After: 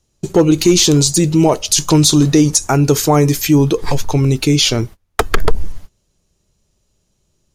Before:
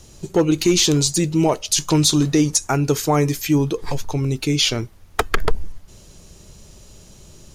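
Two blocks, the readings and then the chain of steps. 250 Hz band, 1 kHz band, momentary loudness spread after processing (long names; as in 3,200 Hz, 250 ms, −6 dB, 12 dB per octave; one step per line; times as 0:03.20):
+6.0 dB, +5.0 dB, 10 LU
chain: noise gate −35 dBFS, range −28 dB
dynamic equaliser 2,100 Hz, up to −4 dB, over −31 dBFS, Q 0.8
in parallel at +1.5 dB: brickwall limiter −14 dBFS, peak gain reduction 7.5 dB
on the sum: level +1.5 dB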